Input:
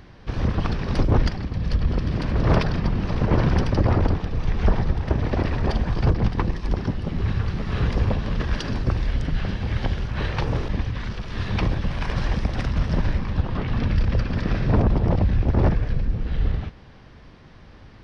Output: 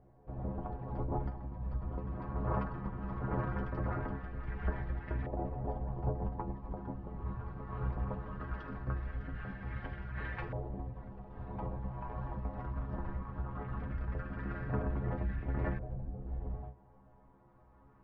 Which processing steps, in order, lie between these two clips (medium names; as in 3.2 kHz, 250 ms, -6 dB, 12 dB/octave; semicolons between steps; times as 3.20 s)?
inharmonic resonator 63 Hz, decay 0.33 s, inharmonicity 0.008; LFO low-pass saw up 0.19 Hz 700–1900 Hz; trim -8 dB